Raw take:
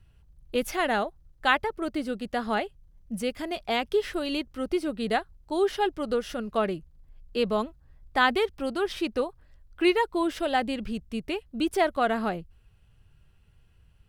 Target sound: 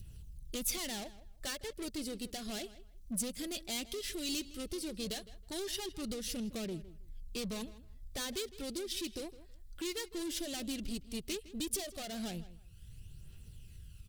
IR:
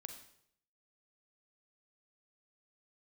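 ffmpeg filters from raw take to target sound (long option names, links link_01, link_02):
-filter_complex "[0:a]asplit=2[link_01][link_02];[link_02]acrusher=bits=4:mix=0:aa=0.5,volume=-6dB[link_03];[link_01][link_03]amix=inputs=2:normalize=0,acompressor=mode=upward:threshold=-42dB:ratio=2.5,aphaser=in_gain=1:out_gain=1:delay=3.8:decay=0.4:speed=0.15:type=triangular,acompressor=threshold=-23dB:ratio=6,asoftclip=type=tanh:threshold=-30.5dB,firequalizer=gain_entry='entry(210,0);entry(860,-11);entry(3700,6);entry(7600,11)':delay=0.05:min_phase=1,asplit=2[link_04][link_05];[link_05]adelay=160,lowpass=frequency=3800:poles=1,volume=-16dB,asplit=2[link_06][link_07];[link_07]adelay=160,lowpass=frequency=3800:poles=1,volume=0.18[link_08];[link_06][link_08]amix=inputs=2:normalize=0[link_09];[link_04][link_09]amix=inputs=2:normalize=0,adynamicequalizer=threshold=0.00178:dfrequency=1200:dqfactor=1.1:tfrequency=1200:tqfactor=1.1:attack=5:release=100:ratio=0.375:range=2.5:mode=cutabove:tftype=bell,volume=-3dB"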